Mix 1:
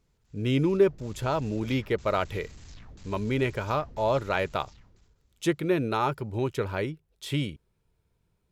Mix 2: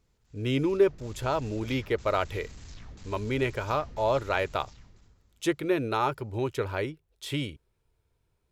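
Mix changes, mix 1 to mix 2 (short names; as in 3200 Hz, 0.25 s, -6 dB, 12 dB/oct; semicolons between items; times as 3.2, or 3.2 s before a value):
speech: add bell 180 Hz -9.5 dB 0.62 oct; background: send +10.0 dB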